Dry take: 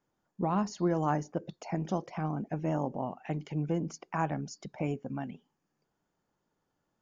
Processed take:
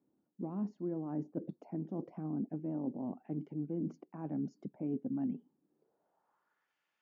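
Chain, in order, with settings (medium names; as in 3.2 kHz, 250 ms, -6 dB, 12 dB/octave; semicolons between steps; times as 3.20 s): reverse; compression 6:1, threshold -39 dBFS, peak gain reduction 14.5 dB; reverse; band-pass sweep 270 Hz -> 2.4 kHz, 5.61–6.76 s; trim +9.5 dB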